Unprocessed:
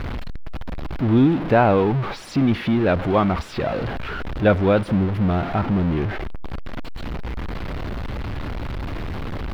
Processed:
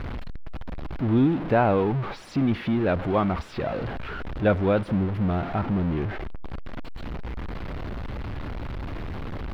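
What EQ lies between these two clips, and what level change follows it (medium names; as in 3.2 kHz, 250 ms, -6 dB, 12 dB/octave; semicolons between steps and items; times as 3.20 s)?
treble shelf 4 kHz -5.5 dB; -4.5 dB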